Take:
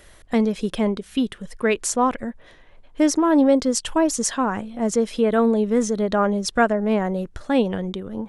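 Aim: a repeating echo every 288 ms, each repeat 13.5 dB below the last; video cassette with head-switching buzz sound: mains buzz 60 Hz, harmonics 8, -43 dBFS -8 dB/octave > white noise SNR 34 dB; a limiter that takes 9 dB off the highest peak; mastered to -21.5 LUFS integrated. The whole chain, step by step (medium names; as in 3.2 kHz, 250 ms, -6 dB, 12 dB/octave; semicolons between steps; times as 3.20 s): peak limiter -13 dBFS; feedback delay 288 ms, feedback 21%, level -13.5 dB; mains buzz 60 Hz, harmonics 8, -43 dBFS -8 dB/octave; white noise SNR 34 dB; trim +1.5 dB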